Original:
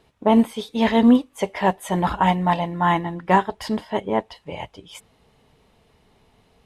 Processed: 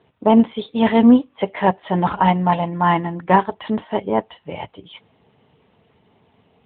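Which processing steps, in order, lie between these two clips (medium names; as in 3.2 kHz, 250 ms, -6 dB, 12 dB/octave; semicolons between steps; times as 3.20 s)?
Chebyshev shaper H 2 -33 dB, 6 -41 dB, 8 -40 dB, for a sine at -5 dBFS; trim +3 dB; AMR-NB 12.2 kbps 8 kHz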